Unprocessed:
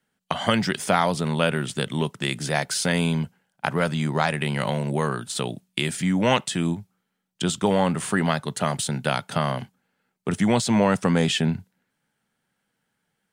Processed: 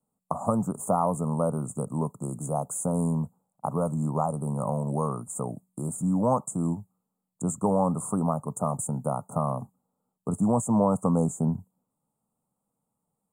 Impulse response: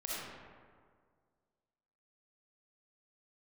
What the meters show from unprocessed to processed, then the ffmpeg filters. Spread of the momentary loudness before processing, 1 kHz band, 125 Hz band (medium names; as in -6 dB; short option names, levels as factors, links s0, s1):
8 LU, -3.5 dB, -2.5 dB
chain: -af "asuperstop=centerf=3000:order=20:qfactor=0.52,equalizer=f=370:t=o:w=0.22:g=-8.5,volume=0.75"